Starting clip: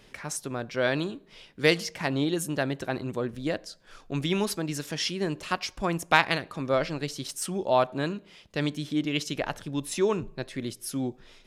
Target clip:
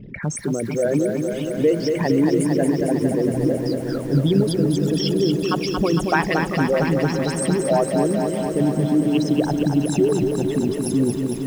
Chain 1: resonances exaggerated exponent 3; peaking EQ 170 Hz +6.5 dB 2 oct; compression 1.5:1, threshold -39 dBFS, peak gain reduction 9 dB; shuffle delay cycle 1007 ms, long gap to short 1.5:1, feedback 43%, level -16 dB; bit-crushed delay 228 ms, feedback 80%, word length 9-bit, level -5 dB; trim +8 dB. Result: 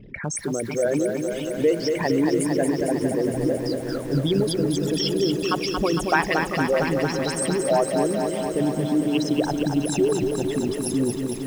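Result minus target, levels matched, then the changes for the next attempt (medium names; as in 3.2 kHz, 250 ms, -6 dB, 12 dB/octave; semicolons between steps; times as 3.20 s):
125 Hz band -3.0 dB
change: peaking EQ 170 Hz +15 dB 2 oct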